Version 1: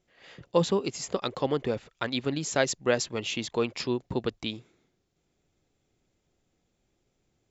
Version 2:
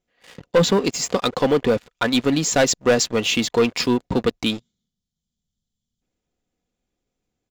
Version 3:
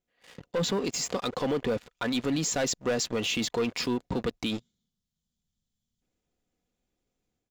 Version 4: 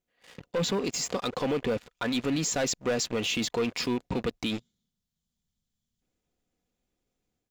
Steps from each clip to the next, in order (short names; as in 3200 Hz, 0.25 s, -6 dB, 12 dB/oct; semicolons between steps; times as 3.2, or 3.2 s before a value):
spectral gain 4.59–6.02, 240–2900 Hz -17 dB; comb 4.1 ms, depth 35%; sample leveller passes 3
limiter -19.5 dBFS, peak gain reduction 11 dB; AGC gain up to 5.5 dB; gain -7.5 dB
rattling part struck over -36 dBFS, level -34 dBFS